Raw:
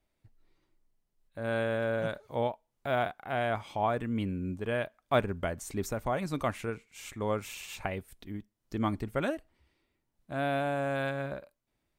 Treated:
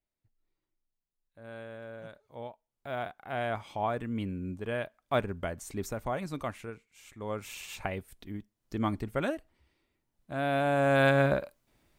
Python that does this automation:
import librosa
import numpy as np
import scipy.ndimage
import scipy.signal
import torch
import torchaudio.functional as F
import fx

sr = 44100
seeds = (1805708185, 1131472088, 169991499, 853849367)

y = fx.gain(x, sr, db=fx.line((2.23, -13.5), (3.41, -2.0), (6.14, -2.0), (7.06, -9.5), (7.56, 0.0), (10.42, 0.0), (11.17, 11.0)))